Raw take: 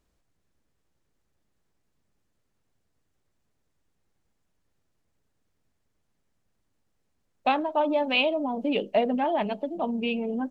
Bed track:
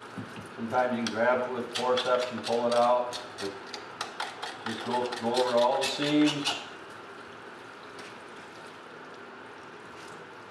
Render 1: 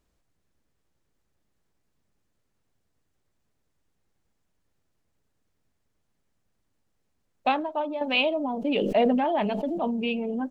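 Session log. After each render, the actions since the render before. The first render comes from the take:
0:07.48–0:08.01: fade out, to −9 dB
0:08.55–0:10.12: level that may fall only so fast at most 23 dB per second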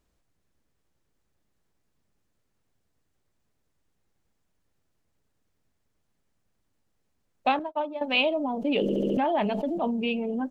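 0:07.59–0:08.28: downward expander −28 dBFS
0:08.82: stutter in place 0.07 s, 5 plays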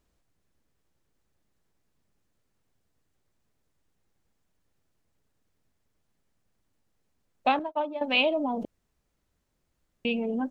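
0:08.65–0:10.05: fill with room tone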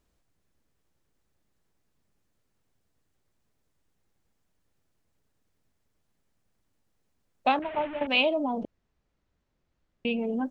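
0:07.62–0:08.07: linear delta modulator 16 kbit/s, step −32 dBFS
0:08.60–0:10.19: high-frequency loss of the air 110 metres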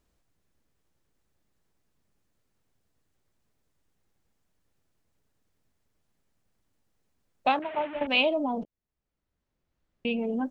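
0:07.47–0:07.95: high-pass filter 230 Hz 6 dB per octave
0:08.64–0:10.17: fade in, from −21 dB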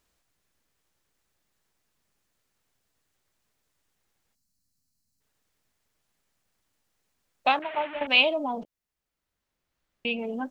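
0:04.35–0:05.21: gain on a spectral selection 280–3,900 Hz −16 dB
tilt shelving filter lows −5.5 dB, about 640 Hz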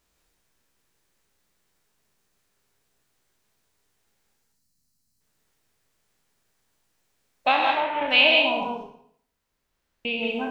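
peak hold with a decay on every bin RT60 0.63 s
reverb whose tail is shaped and stops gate 210 ms rising, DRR 1 dB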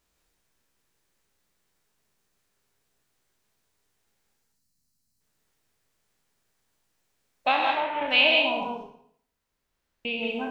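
level −2.5 dB

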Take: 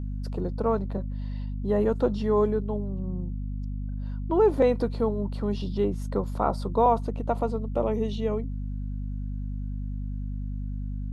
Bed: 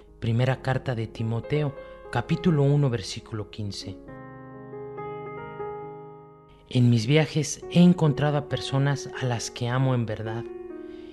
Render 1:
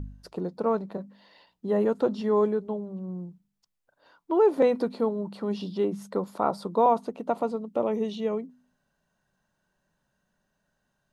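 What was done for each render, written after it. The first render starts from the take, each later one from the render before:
hum removal 50 Hz, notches 5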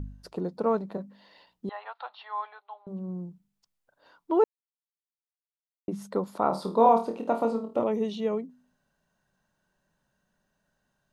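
0:01.69–0:02.87: Chebyshev band-pass filter 750–4,100 Hz, order 4
0:04.44–0:05.88: silence
0:06.48–0:07.84: flutter between parallel walls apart 4.5 metres, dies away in 0.3 s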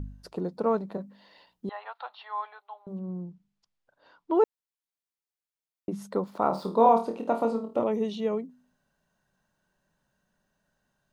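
0:02.99–0:04.35: low-pass filter 5,500 Hz
0:06.23–0:06.77: running median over 5 samples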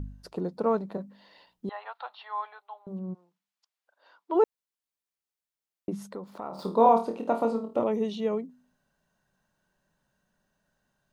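0:03.13–0:04.34: high-pass filter 1,200 Hz → 430 Hz
0:06.09–0:06.59: downward compressor 2 to 1, threshold −42 dBFS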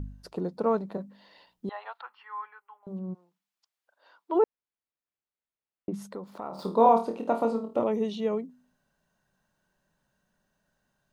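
0:02.01–0:02.83: phaser with its sweep stopped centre 1,600 Hz, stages 4
0:04.38–0:05.94: high-frequency loss of the air 330 metres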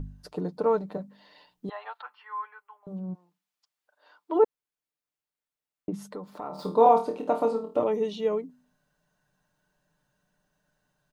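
comb filter 6.7 ms, depth 47%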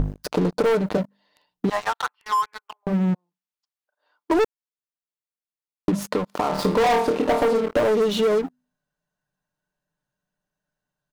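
leveller curve on the samples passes 5
downward compressor 4 to 1, threshold −19 dBFS, peak gain reduction 8.5 dB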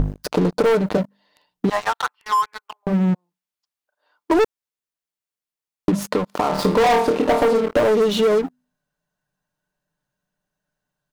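level +3 dB

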